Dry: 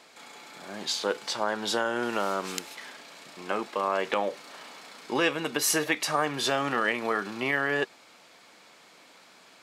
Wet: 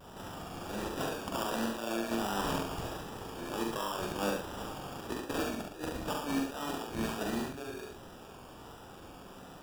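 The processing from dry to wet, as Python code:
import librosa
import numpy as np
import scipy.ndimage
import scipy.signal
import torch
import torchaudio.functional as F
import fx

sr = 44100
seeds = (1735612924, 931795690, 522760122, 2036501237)

y = scipy.signal.sosfilt(scipy.signal.butter(8, 200.0, 'highpass', fs=sr, output='sos'), x)
y = fx.peak_eq(y, sr, hz=670.0, db=-11.0, octaves=1.6)
y = fx.over_compress(y, sr, threshold_db=-37.0, ratio=-0.5)
y = fx.sample_hold(y, sr, seeds[0], rate_hz=2100.0, jitter_pct=0)
y = fx.vibrato(y, sr, rate_hz=1.4, depth_cents=60.0)
y = fx.doubler(y, sr, ms=44.0, db=-4.0)
y = y + 10.0 ** (-4.5 / 20.0) * np.pad(y, (int(70 * sr / 1000.0), 0))[:len(y)]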